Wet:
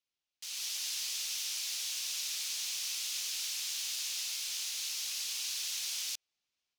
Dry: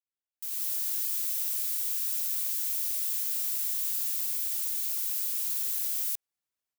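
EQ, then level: distance through air 54 m; high-order bell 3.9 kHz +9 dB; +1.5 dB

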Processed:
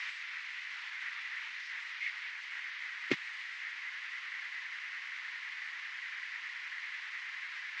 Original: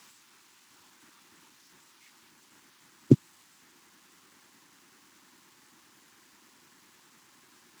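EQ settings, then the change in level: resonant high-pass 2 kHz, resonance Q 4.8; low-pass 9 kHz; distance through air 250 m; +17.0 dB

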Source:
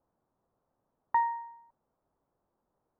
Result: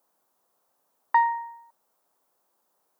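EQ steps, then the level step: high-pass 91 Hz; tilt EQ +4 dB/octave; bass shelf 140 Hz -9.5 dB; +7.0 dB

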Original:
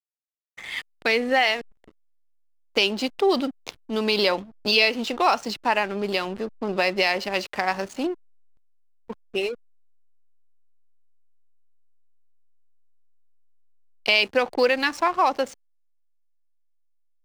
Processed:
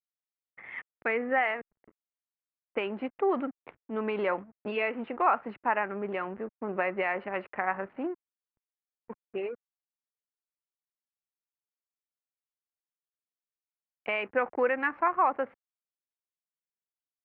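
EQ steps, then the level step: high-pass 120 Hz 6 dB/octave; steep low-pass 2.2 kHz 36 dB/octave; dynamic bell 1.3 kHz, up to +5 dB, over -38 dBFS, Q 2; -6.5 dB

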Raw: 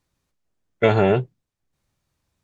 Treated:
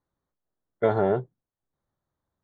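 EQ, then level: boxcar filter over 17 samples; bass shelf 270 Hz -9 dB; -2.0 dB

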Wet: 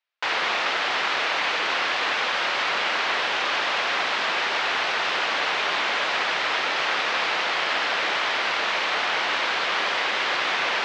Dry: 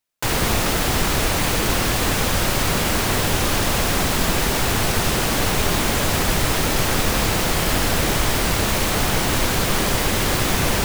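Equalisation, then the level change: band-pass 550–4000 Hz; distance through air 160 m; tilt shelf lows -6 dB, about 880 Hz; 0.0 dB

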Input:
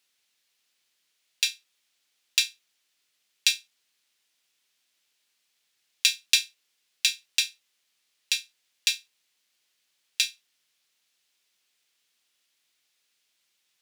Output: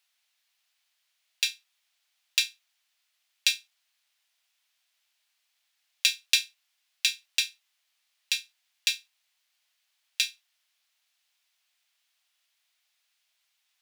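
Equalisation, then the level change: brick-wall FIR high-pass 590 Hz; peaking EQ 7.6 kHz -3.5 dB 1.7 oct; 0.0 dB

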